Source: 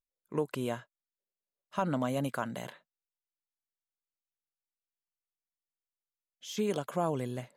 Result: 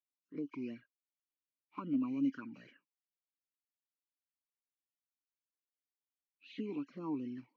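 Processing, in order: knee-point frequency compression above 1.6 kHz 1.5:1; touch-sensitive flanger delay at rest 10.8 ms, full sweep at -28.5 dBFS; talking filter i-u 2.6 Hz; trim +5.5 dB

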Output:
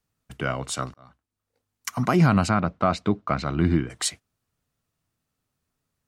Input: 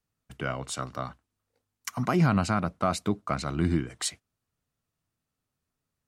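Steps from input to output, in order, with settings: 0.94–1.94 s: fade in; 2.49–3.90 s: low-pass 4 kHz 12 dB/octave; trim +4.5 dB

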